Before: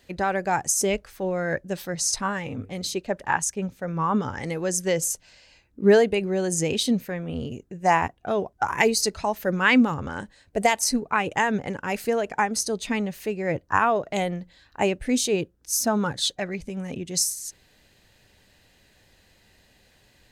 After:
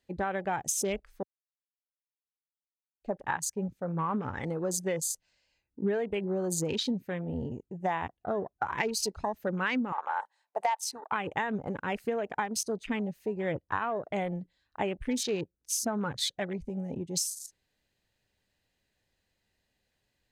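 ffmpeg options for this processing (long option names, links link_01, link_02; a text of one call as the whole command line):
ffmpeg -i in.wav -filter_complex "[0:a]asettb=1/sr,asplit=3[link_01][link_02][link_03];[link_01]atrim=end=9.924[link_04];[link_02]atrim=start=9.92:end=11.12,asetpts=PTS-STARTPTS,afade=type=in:duration=0.004:curve=qsin,afade=type=out:start_time=1.196:duration=0.004:curve=qsin,highpass=frequency=870:width_type=q:width=5.9[link_05];[link_03]atrim=start=11.116[link_06];[link_04][link_05]acrossfade=duration=0.004:curve1=hsin:curve2=qsin[link_07];[link_07][link_06]acrossfade=duration=0.004:curve1=qsin:curve2=hsin,asplit=3[link_08][link_09][link_10];[link_08]atrim=end=1.23,asetpts=PTS-STARTPTS,afade=type=out:start_time=1.226:duration=0.004:curve=hsin[link_11];[link_09]atrim=start=1.23:end=3.04,asetpts=PTS-STARTPTS,volume=0[link_12];[link_10]atrim=start=3.04,asetpts=PTS-STARTPTS,afade=type=in:duration=0.004:curve=hsin[link_13];[link_11][link_12][link_13]concat=n=3:v=0:a=1,afwtdn=0.0178,acompressor=threshold=-24dB:ratio=6,volume=-3dB" out.wav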